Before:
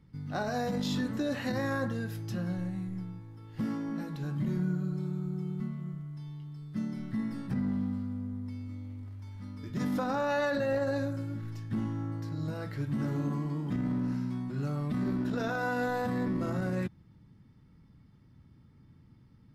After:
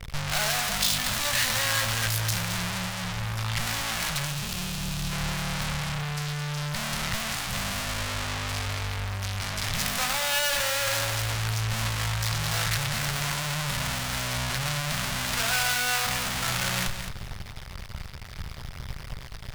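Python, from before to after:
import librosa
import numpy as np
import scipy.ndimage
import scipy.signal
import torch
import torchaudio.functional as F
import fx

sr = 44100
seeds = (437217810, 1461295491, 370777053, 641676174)

p1 = fx.fuzz(x, sr, gain_db=54.0, gate_db=-58.0)
p2 = x + (p1 * 10.0 ** (-3.0 / 20.0))
p3 = fx.spec_box(p2, sr, start_s=4.26, length_s=0.85, low_hz=270.0, high_hz=2400.0, gain_db=-8)
p4 = np.maximum(p3, 0.0)
p5 = fx.tone_stack(p4, sr, knobs='10-0-10')
p6 = fx.notch(p5, sr, hz=480.0, q=14.0)
p7 = p6 + fx.echo_feedback(p6, sr, ms=217, feedback_pct=17, wet_db=-9, dry=0)
y = p7 * 10.0 ** (4.0 / 20.0)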